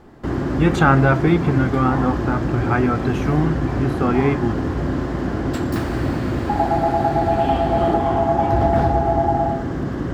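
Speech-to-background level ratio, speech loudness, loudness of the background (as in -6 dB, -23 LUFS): 1.0 dB, -20.0 LUFS, -21.0 LUFS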